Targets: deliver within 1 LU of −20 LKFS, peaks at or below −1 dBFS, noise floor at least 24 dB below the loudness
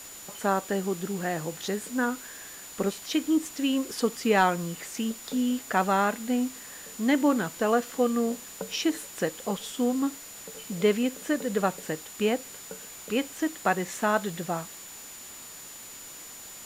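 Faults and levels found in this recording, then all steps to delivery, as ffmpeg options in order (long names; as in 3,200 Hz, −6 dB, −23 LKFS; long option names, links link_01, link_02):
interfering tone 7,000 Hz; level of the tone −45 dBFS; background noise floor −44 dBFS; target noise floor −52 dBFS; integrated loudness −28.0 LKFS; sample peak −10.0 dBFS; target loudness −20.0 LKFS
→ -af "bandreject=frequency=7000:width=30"
-af "afftdn=noise_reduction=8:noise_floor=-44"
-af "volume=8dB"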